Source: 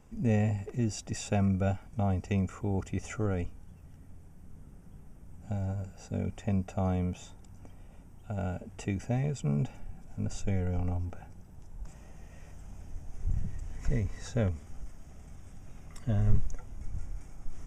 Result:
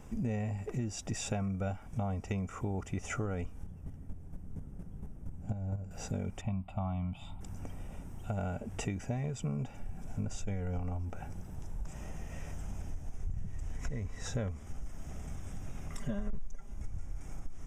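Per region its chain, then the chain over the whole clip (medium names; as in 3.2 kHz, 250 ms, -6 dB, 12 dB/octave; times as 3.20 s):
3.63–5.91 s: tilt shelf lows +5 dB, about 830 Hz + square tremolo 4.3 Hz, depth 60%, duty 15%
6.41–7.41 s: low-pass 3.2 kHz 6 dB/octave + static phaser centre 1.7 kHz, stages 6
15.98–16.74 s: comb 5 ms, depth 97% + hard clipper -13 dBFS
whole clip: band-stop 4.6 kHz, Q 19; dynamic bell 1.1 kHz, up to +4 dB, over -49 dBFS, Q 1.2; compression 5:1, threshold -41 dBFS; trim +7.5 dB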